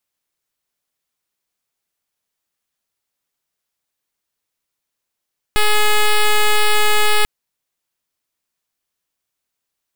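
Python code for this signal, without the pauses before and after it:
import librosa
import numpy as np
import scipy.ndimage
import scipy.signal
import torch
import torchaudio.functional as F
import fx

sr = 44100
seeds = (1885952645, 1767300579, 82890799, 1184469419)

y = fx.pulse(sr, length_s=1.69, hz=422.0, level_db=-12.0, duty_pct=7)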